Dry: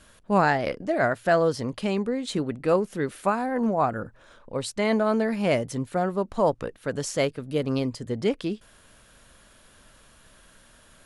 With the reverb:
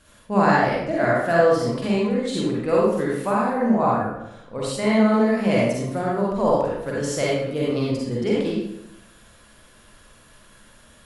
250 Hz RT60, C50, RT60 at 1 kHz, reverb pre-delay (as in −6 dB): 0.95 s, −3.0 dB, 0.80 s, 40 ms